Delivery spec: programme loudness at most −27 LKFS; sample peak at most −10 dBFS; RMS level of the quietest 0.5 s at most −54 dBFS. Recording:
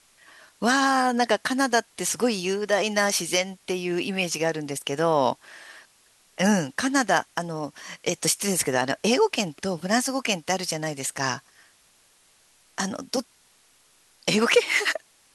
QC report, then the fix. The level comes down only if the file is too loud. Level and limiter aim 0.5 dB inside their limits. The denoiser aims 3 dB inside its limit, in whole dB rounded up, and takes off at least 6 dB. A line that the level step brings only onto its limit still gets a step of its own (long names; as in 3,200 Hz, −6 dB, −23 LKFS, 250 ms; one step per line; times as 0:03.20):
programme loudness −24.5 LKFS: out of spec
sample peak −6.5 dBFS: out of spec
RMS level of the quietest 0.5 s −60 dBFS: in spec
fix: level −3 dB
brickwall limiter −10.5 dBFS